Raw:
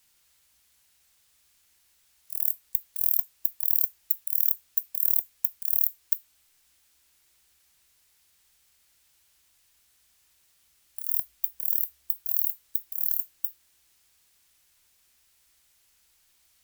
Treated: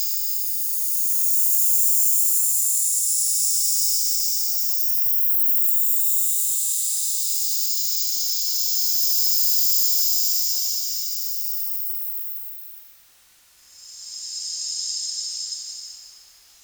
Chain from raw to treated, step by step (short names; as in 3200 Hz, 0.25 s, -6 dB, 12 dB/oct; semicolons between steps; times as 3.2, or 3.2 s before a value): echoes that change speed 0.165 s, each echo -6 st, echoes 3; Paulstretch 5.8×, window 0.50 s, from 11.44; gain +7.5 dB